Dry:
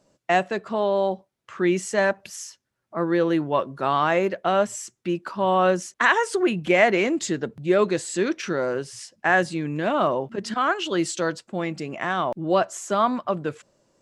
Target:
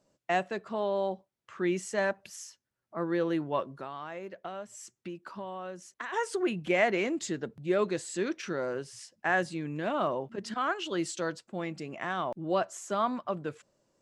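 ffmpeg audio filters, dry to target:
-filter_complex "[0:a]asplit=3[s0][s1][s2];[s0]afade=t=out:st=3.75:d=0.02[s3];[s1]acompressor=threshold=0.0316:ratio=5,afade=t=in:st=3.75:d=0.02,afade=t=out:st=6.12:d=0.02[s4];[s2]afade=t=in:st=6.12:d=0.02[s5];[s3][s4][s5]amix=inputs=3:normalize=0,volume=0.398"

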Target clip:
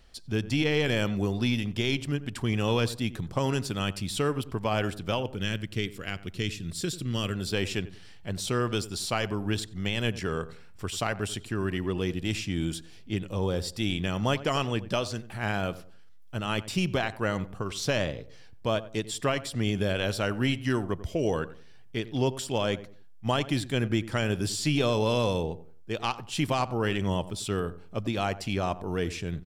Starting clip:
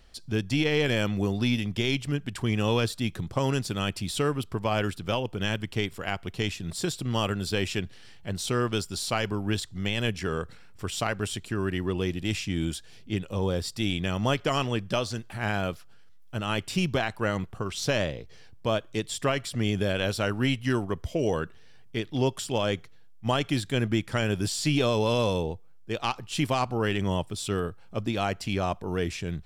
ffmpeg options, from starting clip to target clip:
-filter_complex "[0:a]asettb=1/sr,asplit=3[s0][s1][s2];[s0]atrim=end=5.344[s3];[s1]atrim=start=5.34:end=7.35,asetpts=PTS-STARTPTS,afade=t=in:d=0.004:c=qsin,afade=t=out:st=2.006:d=0.004:c=qsin,equalizer=f=830:t=o:w=0.92:g=-12.5[s4];[s2]atrim=start=7.346[s5];[s3][s4]acrossfade=d=0.004:c1=hsin:c2=qsin[s6];[s6][s5]acrossfade=d=0.004:c1=qsin:c2=hsin,asplit=2[s7][s8];[s8]adelay=92,lowpass=f=1200:p=1,volume=0.188,asplit=2[s9][s10];[s10]adelay=92,lowpass=f=1200:p=1,volume=0.32,asplit=2[s11][s12];[s12]adelay=92,lowpass=f=1200:p=1,volume=0.32[s13];[s7][s9][s11][s13]amix=inputs=4:normalize=0,volume=0.891"

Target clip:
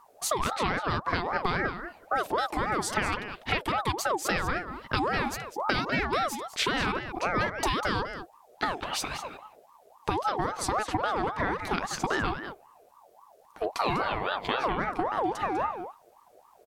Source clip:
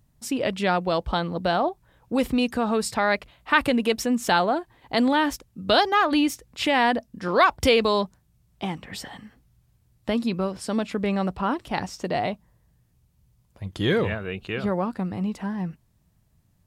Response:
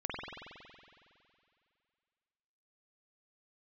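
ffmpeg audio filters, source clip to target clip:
-filter_complex "[0:a]acompressor=threshold=0.0316:ratio=12,asplit=2[s0][s1];[s1]adelay=198.3,volume=0.355,highshelf=f=4000:g=-4.46[s2];[s0][s2]amix=inputs=2:normalize=0,aeval=exprs='val(0)*sin(2*PI*800*n/s+800*0.35/3.7*sin(2*PI*3.7*n/s))':c=same,volume=2.51"

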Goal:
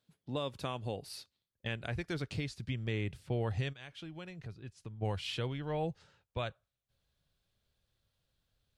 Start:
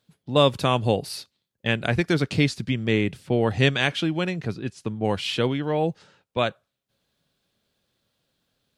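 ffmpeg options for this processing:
-filter_complex "[0:a]asubboost=boost=8:cutoff=81,asplit=3[s0][s1][s2];[s0]afade=t=out:st=3.72:d=0.02[s3];[s1]acompressor=threshold=0.0141:ratio=3,afade=t=in:st=3.72:d=0.02,afade=t=out:st=5.01:d=0.02[s4];[s2]afade=t=in:st=5.01:d=0.02[s5];[s3][s4][s5]amix=inputs=3:normalize=0,alimiter=limit=0.15:level=0:latency=1:release=432,volume=0.355"

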